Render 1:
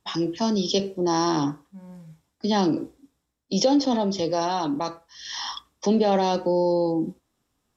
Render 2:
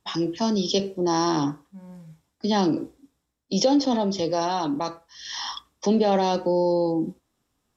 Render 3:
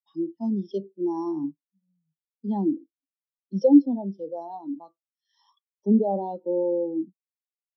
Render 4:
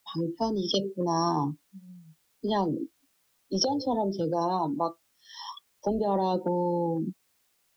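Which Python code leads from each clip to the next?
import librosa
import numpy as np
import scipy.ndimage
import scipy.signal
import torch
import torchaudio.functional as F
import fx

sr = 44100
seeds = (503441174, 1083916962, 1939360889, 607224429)

y1 = x
y2 = fx.spectral_expand(y1, sr, expansion=2.5)
y2 = y2 * 10.0 ** (4.5 / 20.0)
y3 = fx.dynamic_eq(y2, sr, hz=640.0, q=1.3, threshold_db=-38.0, ratio=4.0, max_db=-6)
y3 = fx.spectral_comp(y3, sr, ratio=10.0)
y3 = y3 * 10.0 ** (-6.5 / 20.0)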